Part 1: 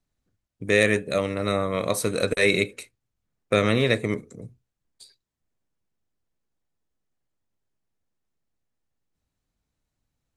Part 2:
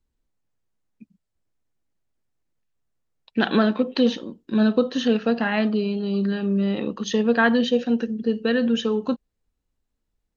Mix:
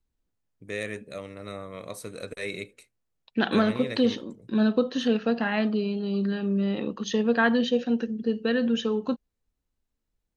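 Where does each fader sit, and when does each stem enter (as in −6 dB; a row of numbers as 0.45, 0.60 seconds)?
−13.5, −3.5 decibels; 0.00, 0.00 seconds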